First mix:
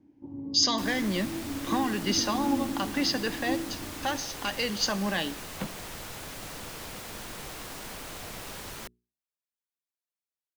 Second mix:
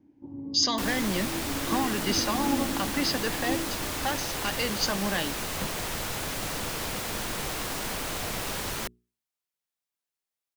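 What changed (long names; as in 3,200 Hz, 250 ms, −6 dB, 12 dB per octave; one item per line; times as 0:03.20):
speech: send −6.5 dB
second sound +8.0 dB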